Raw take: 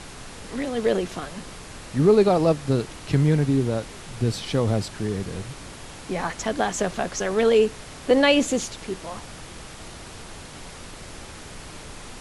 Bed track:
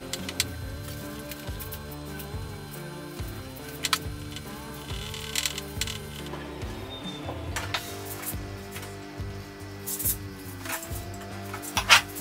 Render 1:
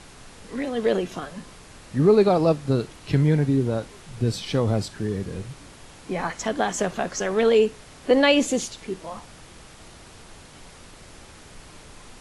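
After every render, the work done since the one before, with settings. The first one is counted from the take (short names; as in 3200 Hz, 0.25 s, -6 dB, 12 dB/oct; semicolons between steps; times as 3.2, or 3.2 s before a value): noise print and reduce 6 dB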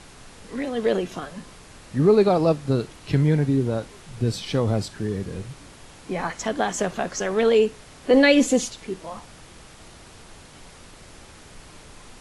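8.13–8.7 comb 4 ms, depth 70%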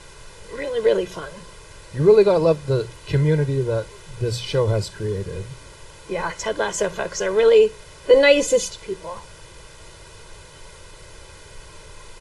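notches 60/120/180 Hz; comb 2 ms, depth 88%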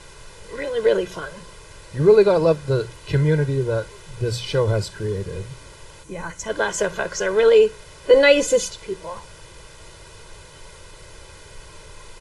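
6.03–6.5 spectral gain 340–5600 Hz -8 dB; dynamic EQ 1500 Hz, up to +5 dB, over -45 dBFS, Q 4.9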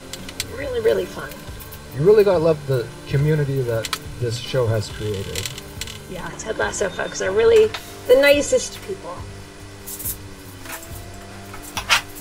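add bed track 0 dB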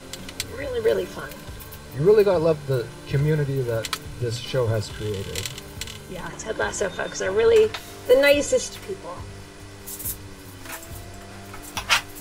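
gain -3 dB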